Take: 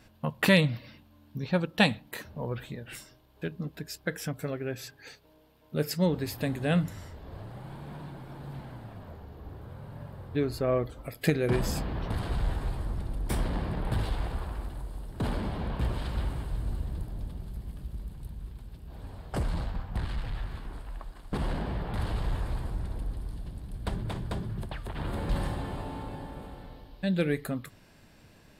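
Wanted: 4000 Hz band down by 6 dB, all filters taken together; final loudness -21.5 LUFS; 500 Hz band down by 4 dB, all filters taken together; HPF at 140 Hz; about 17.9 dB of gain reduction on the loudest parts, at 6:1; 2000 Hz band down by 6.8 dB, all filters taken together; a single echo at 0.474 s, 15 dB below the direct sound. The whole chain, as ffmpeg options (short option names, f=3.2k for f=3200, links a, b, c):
-af "highpass=140,equalizer=f=500:t=o:g=-4.5,equalizer=f=2k:t=o:g=-7,equalizer=f=4k:t=o:g=-5,acompressor=threshold=-40dB:ratio=6,aecho=1:1:474:0.178,volume=24.5dB"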